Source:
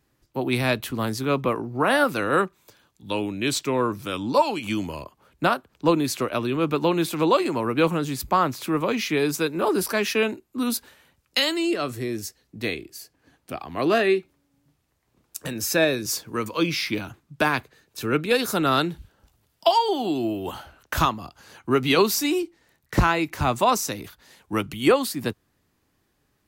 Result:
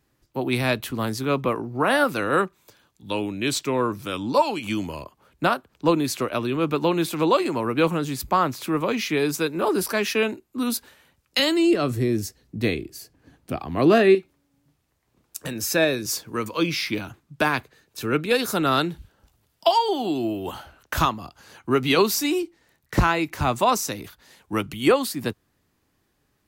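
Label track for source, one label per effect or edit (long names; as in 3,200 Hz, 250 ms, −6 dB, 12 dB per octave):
11.390000	14.150000	low-shelf EQ 390 Hz +10 dB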